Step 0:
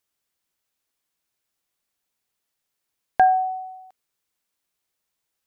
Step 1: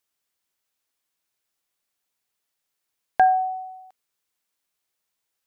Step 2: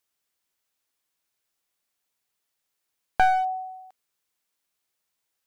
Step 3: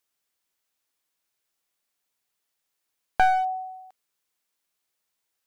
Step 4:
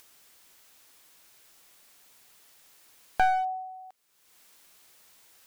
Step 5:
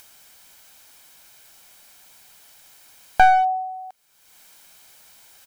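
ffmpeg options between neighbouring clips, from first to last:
-af "lowshelf=f=350:g=-4.5"
-af "aeval=exprs='clip(val(0),-1,0.0708)':c=same"
-af "equalizer=f=94:w=0.85:g=-2.5"
-af "acompressor=mode=upward:threshold=-34dB:ratio=2.5,volume=-3.5dB"
-af "aecho=1:1:1.3:0.39,volume=7dB"

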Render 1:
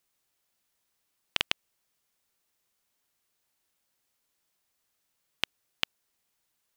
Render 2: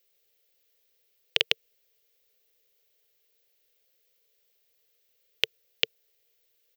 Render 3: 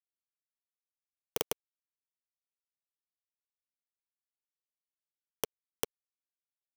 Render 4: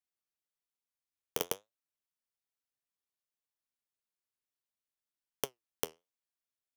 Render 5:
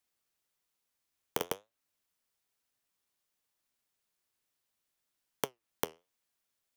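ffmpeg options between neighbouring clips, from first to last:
-af "firequalizer=gain_entry='entry(130,0);entry(220,-18);entry(450,15);entry(640,3);entry(920,-9);entry(2000,3);entry(3100,6);entry(5900,3);entry(9700,-5);entry(15000,11)':delay=0.05:min_phase=1"
-af "highshelf=f=2.8k:g=-11,acrusher=bits=7:mix=0:aa=0.000001,aeval=exprs='(mod(6.68*val(0)+1,2)-1)/6.68':c=same,volume=1.5dB"
-af "flanger=delay=7.2:depth=5.5:regen=69:speed=1.1:shape=triangular,volume=4dB"
-filter_complex "[0:a]acrossover=split=740|3000[a][b][c];[a]acompressor=threshold=-44dB:ratio=4[d];[b]acompressor=threshold=-47dB:ratio=4[e];[c]acompressor=threshold=-48dB:ratio=4[f];[d][e][f]amix=inputs=3:normalize=0,volume=9.5dB"

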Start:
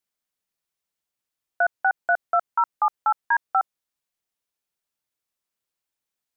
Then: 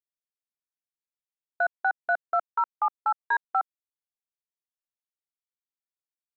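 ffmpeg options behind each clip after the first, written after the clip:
-af "afwtdn=0.0158,volume=-4dB"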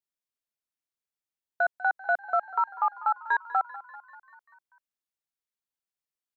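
-filter_complex "[0:a]asplit=7[a][b][c][d][e][f][g];[b]adelay=195,afreqshift=34,volume=-17dB[h];[c]adelay=390,afreqshift=68,volume=-21.3dB[i];[d]adelay=585,afreqshift=102,volume=-25.6dB[j];[e]adelay=780,afreqshift=136,volume=-29.9dB[k];[f]adelay=975,afreqshift=170,volume=-34.2dB[l];[g]adelay=1170,afreqshift=204,volume=-38.5dB[m];[a][h][i][j][k][l][m]amix=inputs=7:normalize=0"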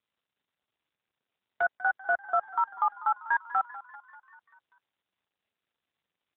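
-ar 8000 -c:a libopencore_amrnb -b:a 7400

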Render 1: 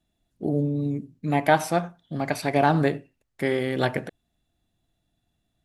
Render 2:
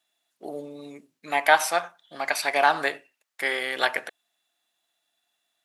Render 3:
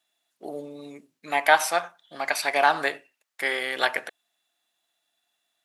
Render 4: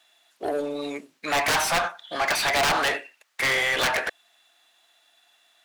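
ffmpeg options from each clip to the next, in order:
-af "highpass=980,volume=6.5dB"
-af anull
-filter_complex "[0:a]aeval=exprs='(mod(6.31*val(0)+1,2)-1)/6.31':c=same,asplit=2[a][b];[b]highpass=f=720:p=1,volume=23dB,asoftclip=type=tanh:threshold=-16dB[c];[a][c]amix=inputs=2:normalize=0,lowpass=f=4.1k:p=1,volume=-6dB"

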